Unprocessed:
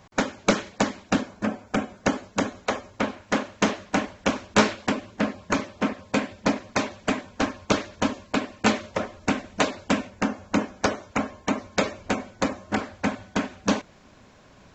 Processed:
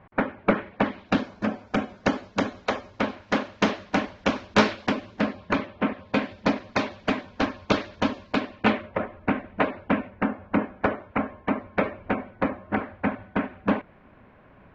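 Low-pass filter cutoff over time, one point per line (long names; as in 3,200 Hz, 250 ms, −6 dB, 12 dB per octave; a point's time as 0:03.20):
low-pass filter 24 dB per octave
0:00.66 2,300 Hz
0:01.25 5,100 Hz
0:05.20 5,100 Hz
0:05.84 3,000 Hz
0:06.28 4,700 Hz
0:08.42 4,700 Hz
0:08.90 2,400 Hz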